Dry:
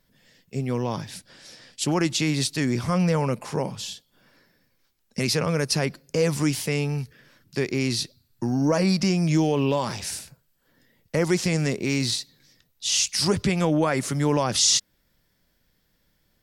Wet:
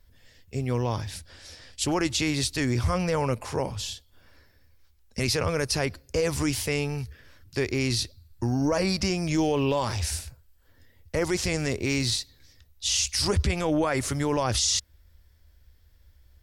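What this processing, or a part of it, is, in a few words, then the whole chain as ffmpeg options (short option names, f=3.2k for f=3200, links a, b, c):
car stereo with a boomy subwoofer: -af "lowshelf=f=110:t=q:w=3:g=13,alimiter=limit=-16dB:level=0:latency=1:release=14"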